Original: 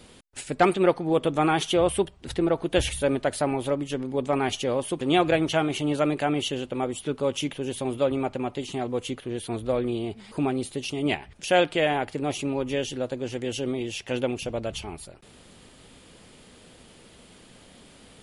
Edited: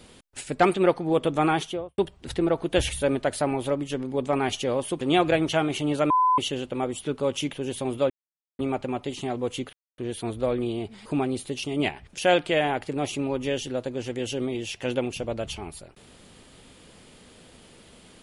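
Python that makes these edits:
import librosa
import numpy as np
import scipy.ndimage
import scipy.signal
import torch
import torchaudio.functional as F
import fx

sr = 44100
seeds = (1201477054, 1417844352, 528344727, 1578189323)

y = fx.studio_fade_out(x, sr, start_s=1.48, length_s=0.5)
y = fx.edit(y, sr, fx.bleep(start_s=6.1, length_s=0.28, hz=1010.0, db=-17.0),
    fx.insert_silence(at_s=8.1, length_s=0.49),
    fx.insert_silence(at_s=9.24, length_s=0.25), tone=tone)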